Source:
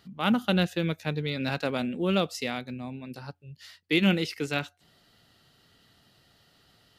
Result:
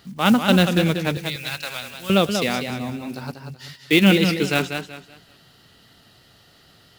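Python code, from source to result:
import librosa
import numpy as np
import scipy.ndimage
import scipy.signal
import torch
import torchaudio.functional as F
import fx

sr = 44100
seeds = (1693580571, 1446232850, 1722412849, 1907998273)

y = fx.block_float(x, sr, bits=5)
y = fx.tone_stack(y, sr, knobs='10-0-10', at=(1.17, 2.1))
y = fx.echo_warbled(y, sr, ms=189, feedback_pct=30, rate_hz=2.8, cents=97, wet_db=-7)
y = y * 10.0 ** (8.0 / 20.0)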